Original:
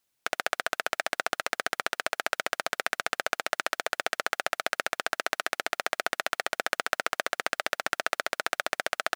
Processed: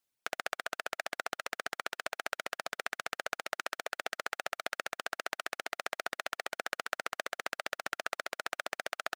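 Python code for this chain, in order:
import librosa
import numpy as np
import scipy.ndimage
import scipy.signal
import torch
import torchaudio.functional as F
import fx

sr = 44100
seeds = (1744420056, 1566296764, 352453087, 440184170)

y = fx.dereverb_blind(x, sr, rt60_s=1.9)
y = y * librosa.db_to_amplitude(-6.5)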